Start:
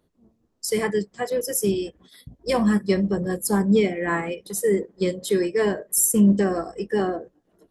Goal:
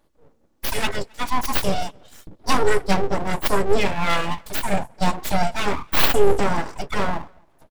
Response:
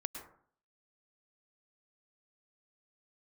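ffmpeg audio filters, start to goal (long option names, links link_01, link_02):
-filter_complex "[0:a]aecho=1:1:3.5:0.95,asplit=2[link_01][link_02];[link_02]adelay=268.2,volume=-30dB,highshelf=frequency=4000:gain=-6.04[link_03];[link_01][link_03]amix=inputs=2:normalize=0,aeval=exprs='abs(val(0))':channel_layout=same,volume=3.5dB"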